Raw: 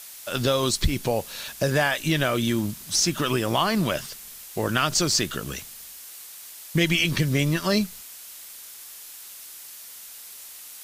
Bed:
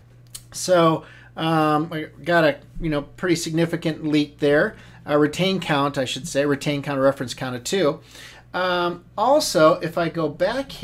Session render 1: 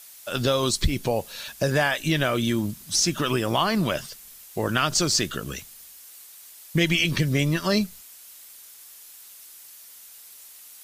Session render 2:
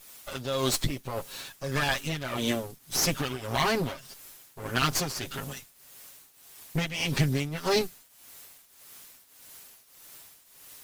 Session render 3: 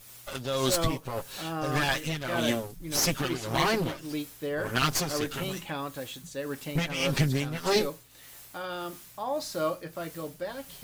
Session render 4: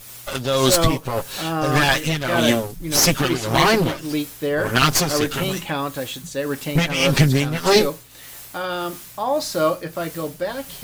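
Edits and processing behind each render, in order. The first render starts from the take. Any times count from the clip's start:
noise reduction 6 dB, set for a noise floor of -43 dBFS
comb filter that takes the minimum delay 7.4 ms; tremolo triangle 1.7 Hz, depth 80%
add bed -14.5 dB
trim +10 dB; peak limiter -2 dBFS, peak gain reduction 1 dB

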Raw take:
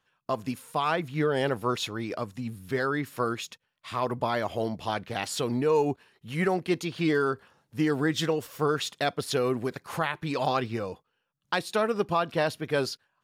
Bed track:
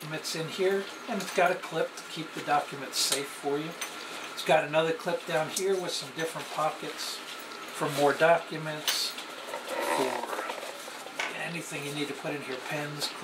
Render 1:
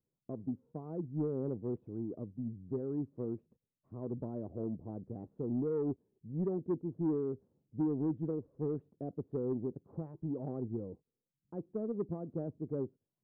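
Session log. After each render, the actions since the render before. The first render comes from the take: four-pole ladder low-pass 450 Hz, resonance 25%; saturation -25 dBFS, distortion -20 dB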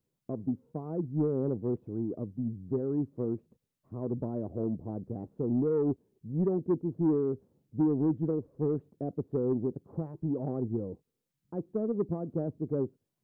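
trim +6 dB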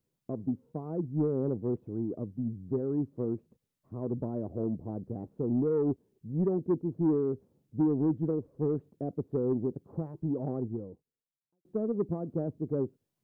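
10.54–11.65 s: fade out quadratic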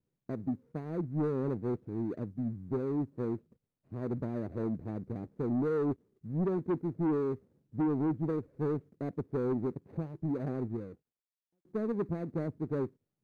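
median filter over 41 samples; saturation -24.5 dBFS, distortion -17 dB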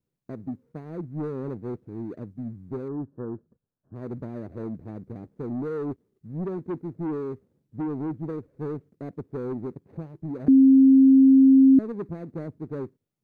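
2.88–3.95 s: brick-wall FIR low-pass 1.8 kHz; 10.48–11.79 s: bleep 267 Hz -11 dBFS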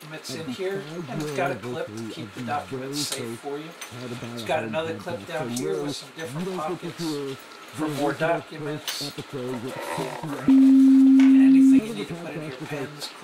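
add bed track -2 dB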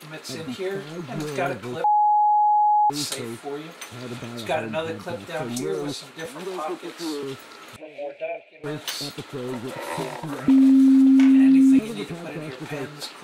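1.84–2.90 s: bleep 839 Hz -15 dBFS; 6.26–7.23 s: high-pass 250 Hz 24 dB/octave; 7.76–8.64 s: two resonant band-passes 1.2 kHz, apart 2 oct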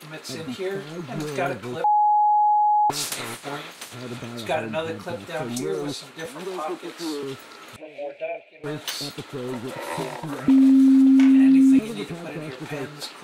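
2.53–3.93 s: spectral peaks clipped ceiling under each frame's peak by 18 dB

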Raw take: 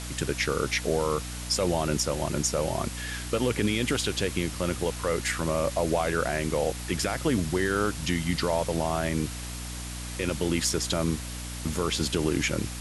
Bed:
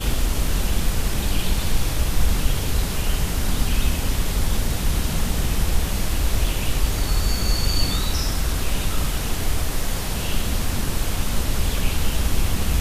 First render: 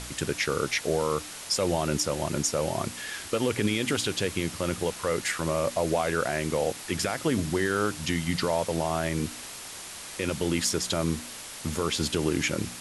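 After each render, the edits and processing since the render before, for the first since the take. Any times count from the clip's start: de-hum 60 Hz, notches 5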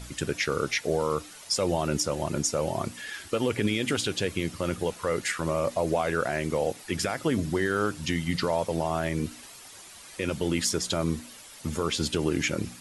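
noise reduction 10 dB, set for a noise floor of -41 dBFS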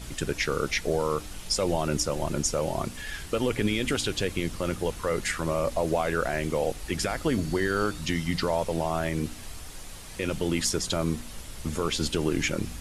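add bed -20 dB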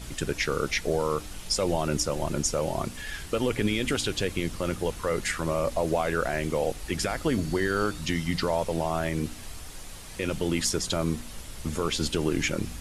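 no audible change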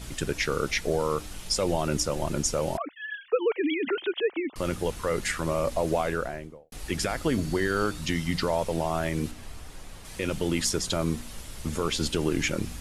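2.77–4.56 s: formants replaced by sine waves; 5.96–6.72 s: studio fade out; 9.31–10.05 s: treble shelf 3.2 kHz -8 dB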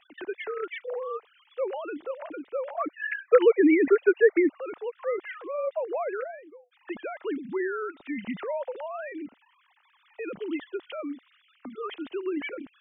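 formants replaced by sine waves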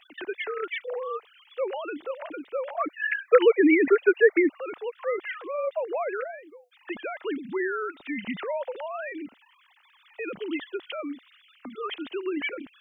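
treble shelf 2 kHz +9.5 dB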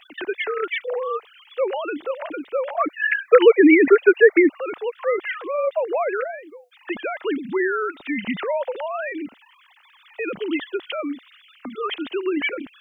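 trim +6.5 dB; peak limiter -2 dBFS, peak gain reduction 2.5 dB

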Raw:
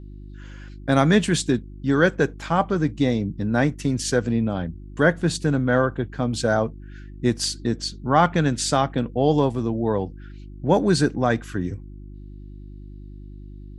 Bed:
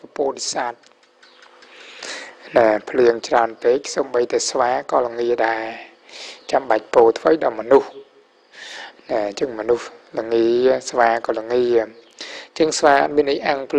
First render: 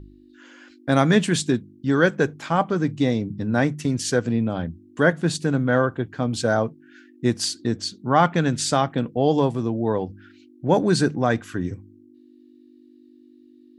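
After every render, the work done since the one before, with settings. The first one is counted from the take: de-hum 50 Hz, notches 4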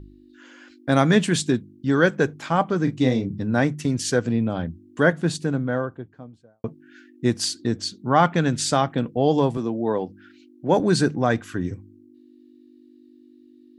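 2.84–3.38 s: doubling 31 ms -7 dB; 5.02–6.64 s: studio fade out; 9.57–10.80 s: high-pass 170 Hz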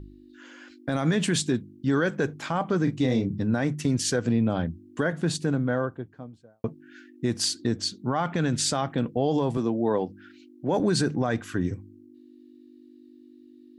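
peak limiter -15 dBFS, peak gain reduction 12 dB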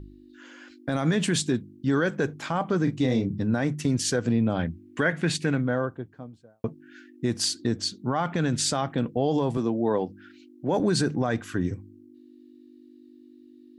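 4.58–5.60 s: peaking EQ 2.2 kHz +8 dB -> +14.5 dB 0.93 oct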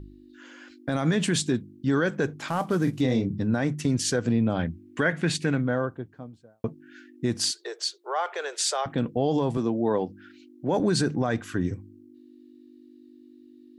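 2.48–3.01 s: CVSD coder 64 kbps; 7.51–8.86 s: steep high-pass 390 Hz 72 dB/octave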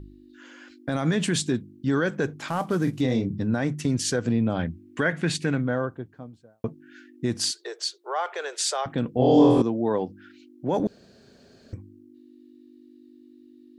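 9.12–9.62 s: flutter echo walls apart 4.1 m, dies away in 1.3 s; 10.87–11.73 s: room tone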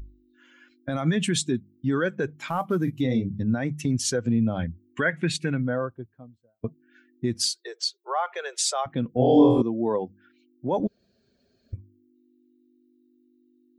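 expander on every frequency bin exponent 1.5; in parallel at 0 dB: compression, threshold -33 dBFS, peak gain reduction 18.5 dB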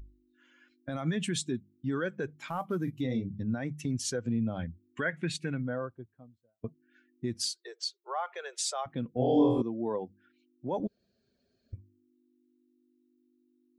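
trim -7.5 dB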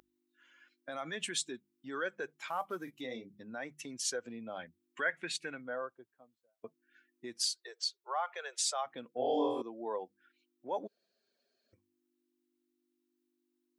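high-pass 560 Hz 12 dB/octave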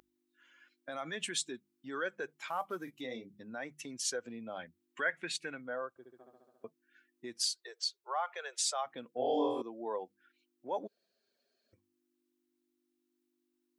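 5.89–6.65 s: flutter echo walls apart 11.8 m, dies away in 1.5 s

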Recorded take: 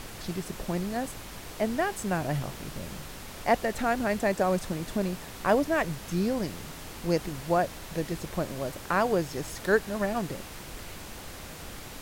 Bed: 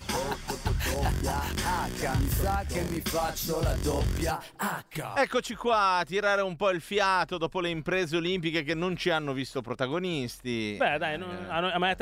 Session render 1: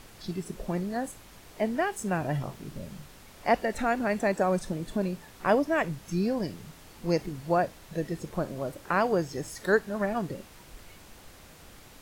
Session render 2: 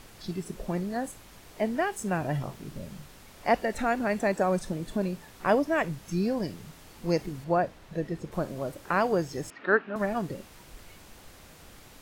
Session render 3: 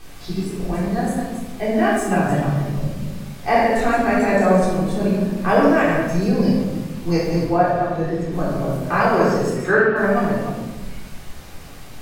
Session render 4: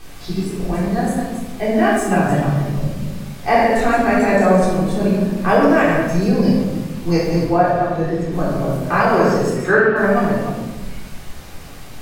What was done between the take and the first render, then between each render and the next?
noise print and reduce 9 dB
7.44–8.32 s: treble shelf 4.8 kHz -11 dB; 9.50–9.96 s: cabinet simulation 250–3000 Hz, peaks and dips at 270 Hz +9 dB, 490 Hz -4 dB, 1.3 kHz +8 dB, 2.6 kHz +7 dB
chunks repeated in reverse 154 ms, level -6 dB; simulated room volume 540 m³, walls mixed, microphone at 3.7 m
trim +2.5 dB; peak limiter -3 dBFS, peak gain reduction 2.5 dB

